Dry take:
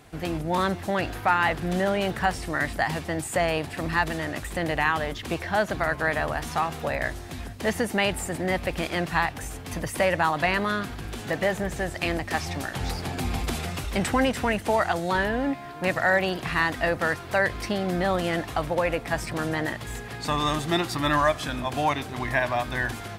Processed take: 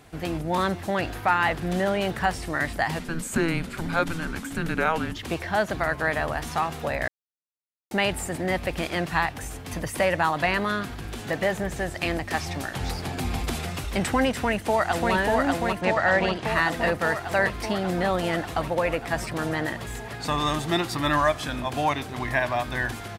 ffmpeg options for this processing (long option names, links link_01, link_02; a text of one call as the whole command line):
ffmpeg -i in.wav -filter_complex "[0:a]asettb=1/sr,asplit=3[link_01][link_02][link_03];[link_01]atrim=end=2.994[link_04];[link_02]atrim=start=2.99:end=5.16,asetpts=PTS-STARTPTS,afade=type=in:duration=0.004:curve=qsin,afade=type=out:start_time=2.166:duration=0.004:curve=qsin,afreqshift=-330[link_05];[link_03]atrim=start=5.156[link_06];[link_04][link_05]acrossfade=duration=0.004:curve1=hsin:curve2=qsin[link_07];[link_07][link_06]acrossfade=duration=0.004:curve1=qsin:curve2=hsin,asplit=2[link_08][link_09];[link_09]afade=type=in:start_time=14.31:duration=0.01,afade=type=out:start_time=15.13:duration=0.01,aecho=0:1:590|1180|1770|2360|2950|3540|4130|4720|5310|5900|6490|7080:0.841395|0.631046|0.473285|0.354964|0.266223|0.199667|0.14975|0.112313|0.0842345|0.0631759|0.0473819|0.0355364[link_10];[link_08][link_10]amix=inputs=2:normalize=0,asettb=1/sr,asplit=3[link_11][link_12][link_13];[link_11]atrim=end=15.814[link_14];[link_12]atrim=start=15.81:end=16.45,asetpts=PTS-STARTPTS,afade=type=in:duration=0.004:curve=qsin,afade=type=out:start_time=0.636:duration=0.004:curve=qsin,lowpass=5900[link_15];[link_13]atrim=start=16.446[link_16];[link_14][link_15]acrossfade=duration=0.004:curve1=hsin:curve2=qsin[link_17];[link_17][link_16]acrossfade=duration=0.004:curve1=qsin:curve2=hsin,asplit=3[link_18][link_19][link_20];[link_18]atrim=end=7.08,asetpts=PTS-STARTPTS,afade=type=out:start_time=7.076:duration=0.004:curve=hsin[link_21];[link_19]atrim=start=7.08:end=7.91,asetpts=PTS-STARTPTS,volume=0[link_22];[link_20]atrim=start=7.91,asetpts=PTS-STARTPTS,afade=type=in:duration=0.004:curve=hsin[link_23];[link_21][link_22][link_23]concat=n=3:v=0:a=1" out.wav